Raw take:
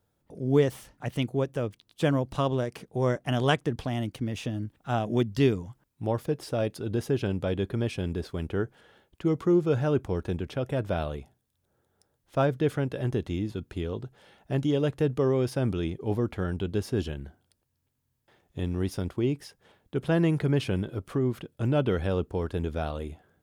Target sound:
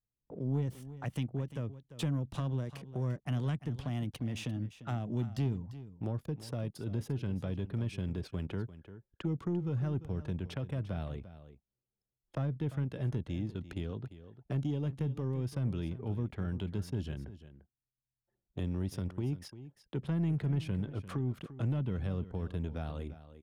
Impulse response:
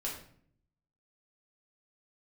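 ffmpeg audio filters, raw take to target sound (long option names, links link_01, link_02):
-filter_complex "[0:a]anlmdn=0.0158,acrossover=split=210[link_01][link_02];[link_02]acompressor=threshold=-40dB:ratio=12[link_03];[link_01][link_03]amix=inputs=2:normalize=0,lowshelf=frequency=99:gain=-10,asoftclip=type=tanh:threshold=-26dB,asplit=2[link_04][link_05];[link_05]aecho=0:1:346:0.188[link_06];[link_04][link_06]amix=inputs=2:normalize=0,adynamicequalizer=threshold=0.00224:dfrequency=420:dqfactor=1.2:tfrequency=420:tqfactor=1.2:attack=5:release=100:ratio=0.375:range=1.5:mode=cutabove:tftype=bell,volume=2dB"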